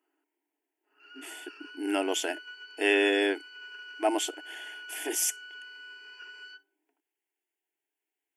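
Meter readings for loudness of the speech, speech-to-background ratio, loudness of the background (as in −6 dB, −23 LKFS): −28.5 LKFS, 16.5 dB, −45.0 LKFS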